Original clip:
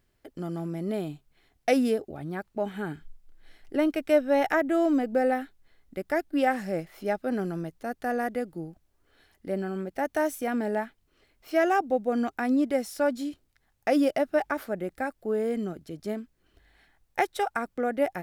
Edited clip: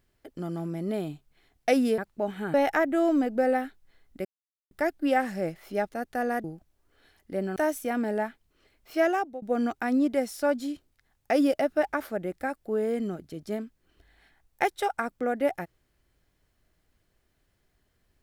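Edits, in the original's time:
0:01.98–0:02.36: remove
0:02.92–0:04.31: remove
0:06.02: splice in silence 0.46 s
0:07.20–0:07.78: remove
0:08.33–0:08.59: remove
0:09.71–0:10.13: remove
0:11.60–0:11.99: fade out, to −19 dB

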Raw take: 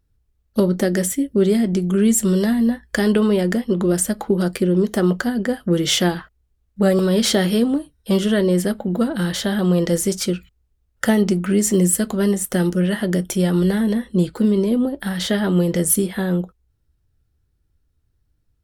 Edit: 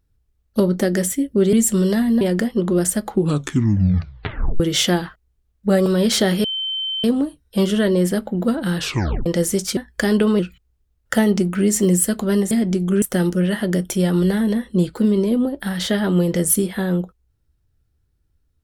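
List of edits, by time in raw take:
0:01.53–0:02.04: move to 0:12.42
0:02.72–0:03.34: move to 0:10.30
0:04.23: tape stop 1.50 s
0:07.57: insert tone 3,090 Hz −21.5 dBFS 0.60 s
0:09.30: tape stop 0.49 s

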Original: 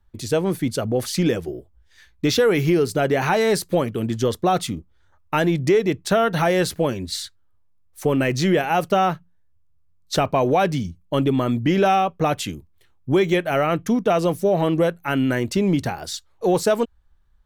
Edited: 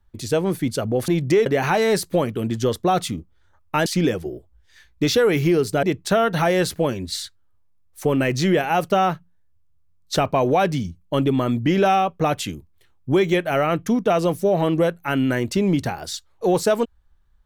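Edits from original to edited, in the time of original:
0:01.08–0:03.05: swap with 0:05.45–0:05.83

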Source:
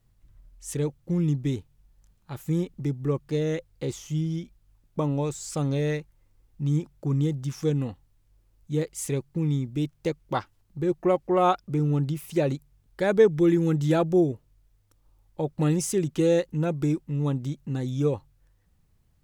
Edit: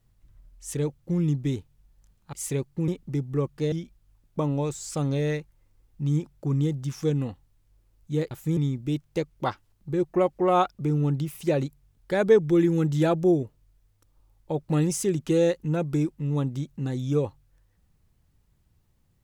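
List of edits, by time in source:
0:02.33–0:02.59: swap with 0:08.91–0:09.46
0:03.43–0:04.32: remove

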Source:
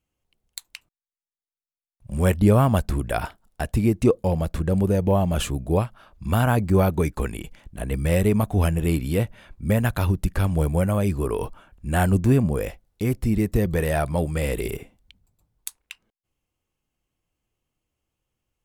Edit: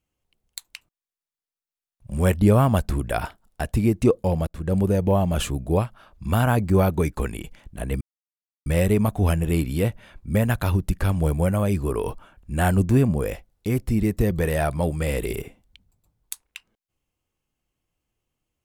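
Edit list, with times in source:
0:04.47–0:04.74: fade in
0:08.01: splice in silence 0.65 s

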